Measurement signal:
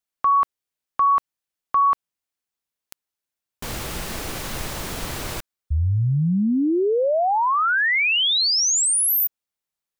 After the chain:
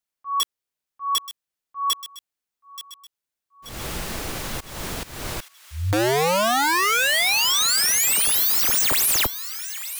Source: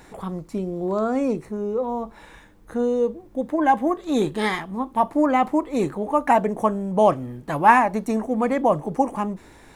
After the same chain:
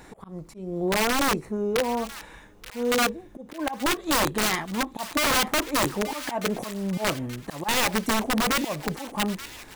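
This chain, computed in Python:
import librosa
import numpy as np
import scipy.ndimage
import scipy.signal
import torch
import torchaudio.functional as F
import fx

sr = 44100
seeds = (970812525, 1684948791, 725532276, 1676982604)

y = fx.auto_swell(x, sr, attack_ms=238.0)
y = (np.mod(10.0 ** (17.0 / 20.0) * y + 1.0, 2.0) - 1.0) / 10.0 ** (17.0 / 20.0)
y = fx.echo_wet_highpass(y, sr, ms=879, feedback_pct=54, hz=1600.0, wet_db=-13.0)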